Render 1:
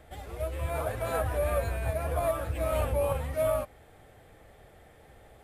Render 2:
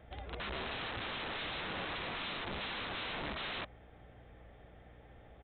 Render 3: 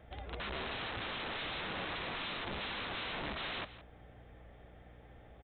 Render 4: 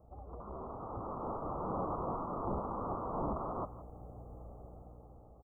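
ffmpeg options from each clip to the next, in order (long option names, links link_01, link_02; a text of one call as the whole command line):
ffmpeg -i in.wav -af "aeval=exprs='val(0)+0.00178*(sin(2*PI*60*n/s)+sin(2*PI*2*60*n/s)/2+sin(2*PI*3*60*n/s)/3+sin(2*PI*4*60*n/s)/4+sin(2*PI*5*60*n/s)/5)':channel_layout=same,aresample=8000,aeval=exprs='(mod(37.6*val(0)+1,2)-1)/37.6':channel_layout=same,aresample=44100,volume=-4dB" out.wav
ffmpeg -i in.wav -af "aecho=1:1:167:0.178" out.wav
ffmpeg -i in.wav -af "dynaudnorm=framelen=300:gausssize=7:maxgain=10dB,asuperstop=centerf=2800:order=20:qfactor=0.58,volume=-3.5dB" out.wav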